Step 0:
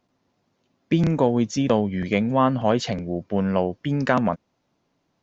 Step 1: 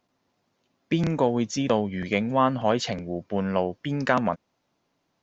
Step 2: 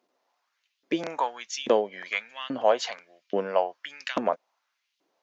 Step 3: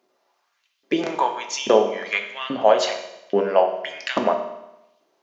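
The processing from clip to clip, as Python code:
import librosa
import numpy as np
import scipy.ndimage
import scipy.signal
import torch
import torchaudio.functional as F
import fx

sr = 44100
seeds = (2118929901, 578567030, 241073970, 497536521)

y1 = fx.low_shelf(x, sr, hz=450.0, db=-5.5)
y2 = fx.filter_lfo_highpass(y1, sr, shape='saw_up', hz=1.2, low_hz=310.0, high_hz=3500.0, q=2.0)
y2 = y2 * librosa.db_to_amplitude(-2.0)
y3 = fx.rev_fdn(y2, sr, rt60_s=0.91, lf_ratio=1.0, hf_ratio=0.95, size_ms=15.0, drr_db=3.5)
y3 = y3 * librosa.db_to_amplitude(5.0)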